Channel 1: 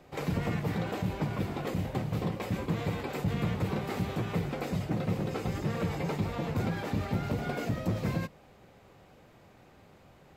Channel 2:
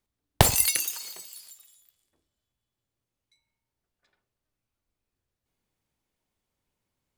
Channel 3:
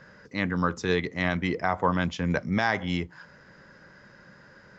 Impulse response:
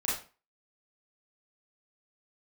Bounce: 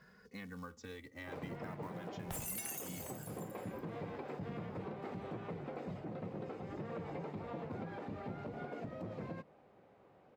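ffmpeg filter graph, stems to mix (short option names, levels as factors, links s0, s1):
-filter_complex "[0:a]bandpass=f=540:t=q:w=0.51:csg=0,adelay=1150,volume=0.562[s0];[1:a]equalizer=f=4400:w=2.4:g=-14.5,alimiter=limit=0.335:level=0:latency=1:release=344,asoftclip=type=tanh:threshold=0.075,adelay=1900,volume=0.596[s1];[2:a]acompressor=threshold=0.0178:ratio=4,acrusher=bits=5:mode=log:mix=0:aa=0.000001,asplit=2[s2][s3];[s3]adelay=2.4,afreqshift=0.42[s4];[s2][s4]amix=inputs=2:normalize=1,volume=0.398,asplit=2[s5][s6];[s6]apad=whole_len=507860[s7];[s0][s7]sidechaincompress=threshold=0.00501:ratio=8:attack=42:release=1200[s8];[s8][s1][s5]amix=inputs=3:normalize=0,alimiter=level_in=3.16:limit=0.0631:level=0:latency=1:release=158,volume=0.316"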